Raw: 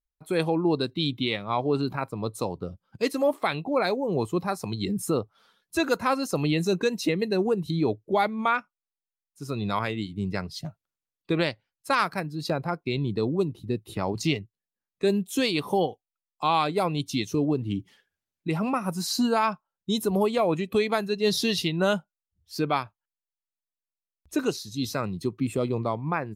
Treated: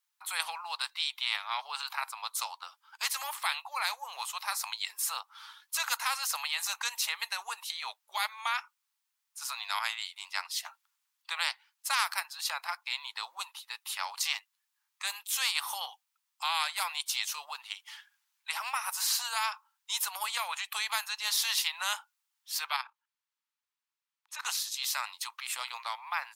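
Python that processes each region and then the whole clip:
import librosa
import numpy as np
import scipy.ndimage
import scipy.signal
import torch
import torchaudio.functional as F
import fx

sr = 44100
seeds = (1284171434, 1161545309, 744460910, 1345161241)

y = fx.chain(x, sr, fx.level_steps(step_db=16),
    fx.high_shelf(hz=5800.0, db=-11.0), at=(22.76, 24.45))
y = scipy.signal.sosfilt(scipy.signal.cheby1(6, 1.0, 860.0, 'highpass', fs=sr, output='sos'), y)
y = fx.spectral_comp(y, sr, ratio=2.0)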